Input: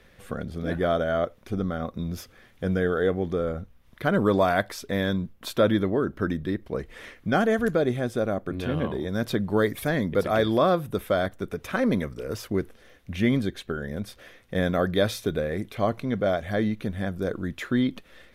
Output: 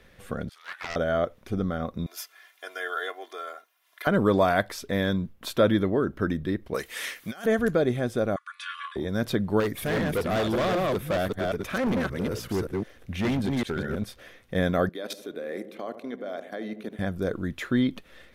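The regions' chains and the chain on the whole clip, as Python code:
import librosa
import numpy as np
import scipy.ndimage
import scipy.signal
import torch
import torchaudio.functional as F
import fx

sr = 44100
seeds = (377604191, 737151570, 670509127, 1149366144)

y = fx.chain(x, sr, fx.highpass(hz=1200.0, slope=24),
    fx.doppler_dist(depth_ms=0.31), at=(0.49, 0.96))
y = fx.chain(y, sr, fx.bessel_highpass(hz=940.0, order=4),
    fx.high_shelf(hz=9500.0, db=6.5),
    fx.comb(ms=2.9, depth=0.84), at=(2.06, 4.07))
y = fx.chain(y, sr, fx.tilt_eq(slope=4.5),
    fx.over_compress(threshold_db=-31.0, ratio=-0.5), at=(6.74, 7.46))
y = fx.chain(y, sr, fx.brickwall_bandpass(low_hz=1000.0, high_hz=11000.0),
    fx.comb(ms=3.5, depth=0.79), at=(8.36, 8.96))
y = fx.chain(y, sr, fx.reverse_delay(ms=192, wet_db=-3),
    fx.clip_hard(threshold_db=-22.5), at=(9.6, 14.04))
y = fx.chain(y, sr, fx.highpass(hz=250.0, slope=24),
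    fx.level_steps(step_db=17),
    fx.echo_filtered(ms=75, feedback_pct=72, hz=930.0, wet_db=-10.0), at=(14.89, 16.99))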